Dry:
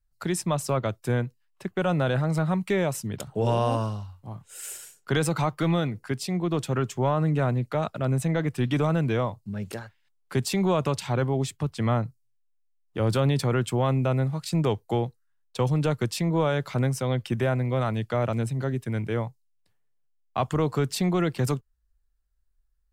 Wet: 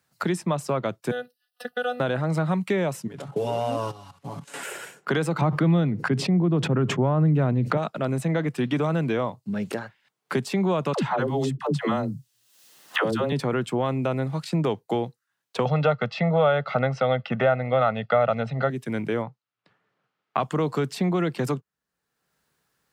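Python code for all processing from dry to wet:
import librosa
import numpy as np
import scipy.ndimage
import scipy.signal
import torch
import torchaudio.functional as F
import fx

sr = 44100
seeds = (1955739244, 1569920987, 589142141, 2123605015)

y = fx.chain(x, sr, fx.bass_treble(bass_db=-11, treble_db=11),
    fx.robotise(hz=246.0),
    fx.fixed_phaser(hz=1500.0, stages=8), at=(1.11, 2.0))
y = fx.chain(y, sr, fx.cvsd(bps=64000),
    fx.comb(ms=7.1, depth=0.88),
    fx.level_steps(step_db=14), at=(3.07, 4.63))
y = fx.chain(y, sr, fx.riaa(side='playback'),
    fx.sustainer(db_per_s=43.0), at=(5.41, 7.77))
y = fx.chain(y, sr, fx.notch(hz=2300.0, q=7.8),
    fx.dispersion(late='lows', ms=104.0, hz=430.0),
    fx.band_squash(depth_pct=100), at=(10.93, 13.32))
y = fx.chain(y, sr, fx.lowpass(hz=4400.0, slope=24),
    fx.peak_eq(hz=970.0, db=8.5, octaves=2.9),
    fx.comb(ms=1.5, depth=0.87), at=(15.65, 18.7))
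y = fx.chain(y, sr, fx.lowpass(hz=3100.0, slope=12),
    fx.peak_eq(hz=1300.0, db=8.0, octaves=0.36), at=(19.22, 20.4))
y = scipy.signal.sosfilt(scipy.signal.butter(4, 150.0, 'highpass', fs=sr, output='sos'), y)
y = fx.high_shelf(y, sr, hz=5600.0, db=-7.5)
y = fx.band_squash(y, sr, depth_pct=70)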